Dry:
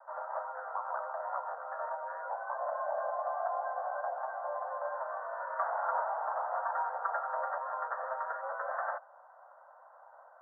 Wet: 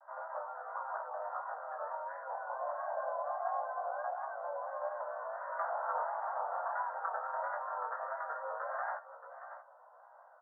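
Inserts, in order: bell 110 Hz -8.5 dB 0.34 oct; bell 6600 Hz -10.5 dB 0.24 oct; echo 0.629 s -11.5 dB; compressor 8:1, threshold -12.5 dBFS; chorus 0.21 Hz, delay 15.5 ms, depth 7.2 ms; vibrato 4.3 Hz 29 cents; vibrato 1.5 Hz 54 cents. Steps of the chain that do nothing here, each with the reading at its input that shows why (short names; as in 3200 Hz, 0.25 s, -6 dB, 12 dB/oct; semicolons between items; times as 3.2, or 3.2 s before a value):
bell 110 Hz: input band starts at 450 Hz; bell 6600 Hz: input band ends at 1900 Hz; compressor, threshold -12.5 dBFS: input peak -19.0 dBFS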